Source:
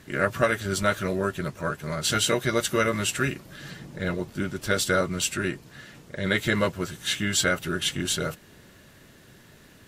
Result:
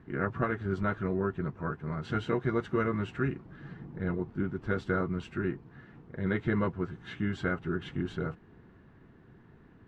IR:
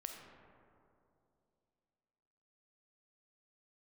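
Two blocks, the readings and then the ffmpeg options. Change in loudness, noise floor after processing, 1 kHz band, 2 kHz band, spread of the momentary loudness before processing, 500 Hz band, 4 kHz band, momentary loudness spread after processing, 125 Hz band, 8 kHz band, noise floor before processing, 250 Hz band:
−7.0 dB, −57 dBFS, −6.5 dB, −10.0 dB, 14 LU, −6.5 dB, −22.0 dB, 12 LU, −2.0 dB, below −35 dB, −53 dBFS, −2.5 dB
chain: -af "lowpass=1100,equalizer=frequency=580:width=5.5:gain=-14.5,volume=-2dB"

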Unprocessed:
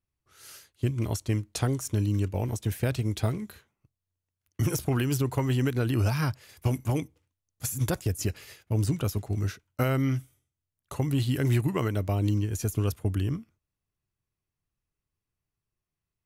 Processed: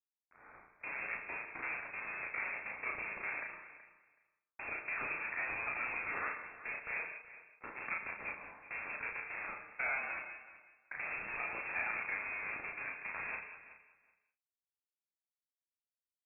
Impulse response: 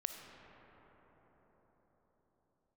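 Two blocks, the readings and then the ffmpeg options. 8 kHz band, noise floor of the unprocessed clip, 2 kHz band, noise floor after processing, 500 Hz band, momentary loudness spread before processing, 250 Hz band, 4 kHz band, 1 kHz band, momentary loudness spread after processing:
below −40 dB, below −85 dBFS, +5.0 dB, below −85 dBFS, −18.0 dB, 8 LU, −29.0 dB, below −35 dB, −4.5 dB, 14 LU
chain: -filter_complex "[0:a]aresample=16000,acrusher=bits=6:dc=4:mix=0:aa=0.000001,aresample=44100,acompressor=threshold=-26dB:ratio=6,asoftclip=type=tanh:threshold=-28dB,highpass=500,volume=28.5dB,asoftclip=hard,volume=-28.5dB,asplit=2[link_01][link_02];[link_02]adelay=35,volume=-2.5dB[link_03];[link_01][link_03]amix=inputs=2:normalize=0,aecho=1:1:375|750:0.168|0.0269[link_04];[1:a]atrim=start_sample=2205,afade=type=out:start_time=0.26:duration=0.01,atrim=end_sample=11907[link_05];[link_04][link_05]afir=irnorm=-1:irlink=0,lowpass=frequency=2400:width_type=q:width=0.5098,lowpass=frequency=2400:width_type=q:width=0.6013,lowpass=frequency=2400:width_type=q:width=0.9,lowpass=frequency=2400:width_type=q:width=2.563,afreqshift=-2800,volume=3.5dB"

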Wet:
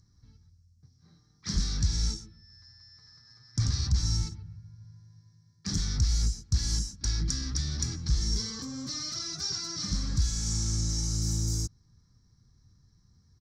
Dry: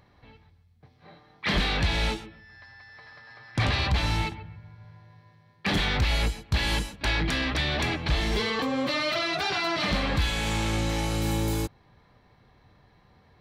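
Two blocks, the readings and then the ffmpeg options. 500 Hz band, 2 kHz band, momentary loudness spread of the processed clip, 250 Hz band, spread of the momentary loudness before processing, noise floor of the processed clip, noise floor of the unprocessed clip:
−20.0 dB, −21.0 dB, 9 LU, −7.5 dB, 7 LU, −65 dBFS, −61 dBFS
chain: -af "firequalizer=gain_entry='entry(100,0);entry(610,-29);entry(1300,-15);entry(2700,-28);entry(5500,12);entry(11000,-11)':delay=0.05:min_phase=1"

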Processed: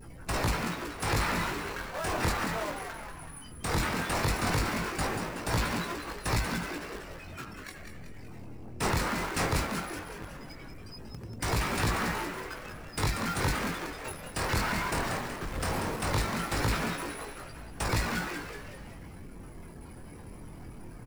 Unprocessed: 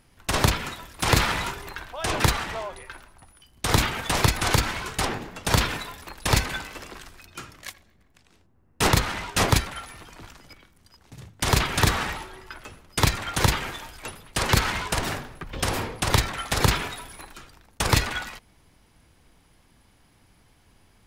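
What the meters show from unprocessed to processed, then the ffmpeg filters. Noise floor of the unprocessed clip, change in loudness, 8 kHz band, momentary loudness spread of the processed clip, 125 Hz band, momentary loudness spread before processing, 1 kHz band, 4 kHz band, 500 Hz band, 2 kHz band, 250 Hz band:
−60 dBFS, −7.0 dB, −8.0 dB, 18 LU, −7.0 dB, 19 LU, −5.0 dB, −9.5 dB, −4.0 dB, −5.5 dB, −3.0 dB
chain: -filter_complex "[0:a]aeval=exprs='val(0)+0.5*0.0447*sgn(val(0))':channel_layout=same,bandreject=frequency=6400:width=17,afftdn=noise_reduction=17:noise_floor=-33,equalizer=frequency=3300:width_type=o:width=0.5:gain=-8.5,flanger=delay=17.5:depth=7.5:speed=0.17,asplit=2[link_01][link_02];[link_02]acrusher=bits=4:mix=0:aa=0.000001,volume=-3.5dB[link_03];[link_01][link_03]amix=inputs=2:normalize=0,asoftclip=type=tanh:threshold=-13.5dB,asplit=7[link_04][link_05][link_06][link_07][link_08][link_09][link_10];[link_05]adelay=187,afreqshift=120,volume=-7dB[link_11];[link_06]adelay=374,afreqshift=240,volume=-12.8dB[link_12];[link_07]adelay=561,afreqshift=360,volume=-18.7dB[link_13];[link_08]adelay=748,afreqshift=480,volume=-24.5dB[link_14];[link_09]adelay=935,afreqshift=600,volume=-30.4dB[link_15];[link_10]adelay=1122,afreqshift=720,volume=-36.2dB[link_16];[link_04][link_11][link_12][link_13][link_14][link_15][link_16]amix=inputs=7:normalize=0,volume=-8dB"

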